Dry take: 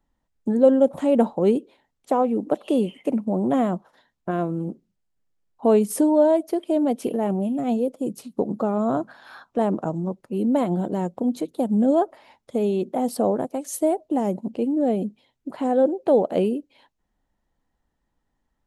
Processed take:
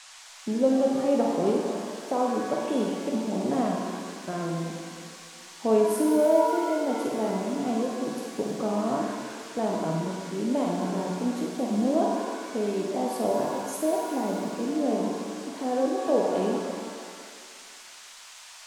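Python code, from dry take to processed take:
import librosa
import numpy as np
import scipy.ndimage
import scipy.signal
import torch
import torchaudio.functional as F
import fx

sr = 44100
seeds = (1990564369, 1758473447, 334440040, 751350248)

y = fx.room_flutter(x, sr, wall_m=8.5, rt60_s=0.44)
y = fx.dmg_noise_band(y, sr, seeds[0], low_hz=690.0, high_hz=8200.0, level_db=-42.0)
y = fx.rev_shimmer(y, sr, seeds[1], rt60_s=1.9, semitones=7, shimmer_db=-8, drr_db=1.5)
y = y * 10.0 ** (-7.5 / 20.0)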